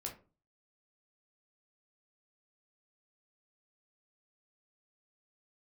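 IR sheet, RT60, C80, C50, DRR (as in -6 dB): 0.35 s, 16.5 dB, 10.5 dB, 0.0 dB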